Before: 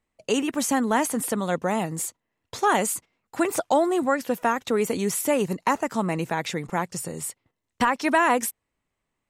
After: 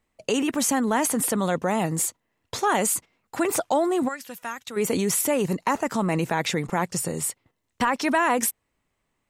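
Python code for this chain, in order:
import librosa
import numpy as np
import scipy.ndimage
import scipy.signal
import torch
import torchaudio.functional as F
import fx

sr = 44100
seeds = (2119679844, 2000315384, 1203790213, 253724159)

p1 = fx.tone_stack(x, sr, knobs='5-5-5', at=(4.07, 4.76), fade=0.02)
p2 = fx.over_compress(p1, sr, threshold_db=-28.0, ratio=-1.0)
p3 = p1 + (p2 * 10.0 ** (-1.0 / 20.0))
y = p3 * 10.0 ** (-3.0 / 20.0)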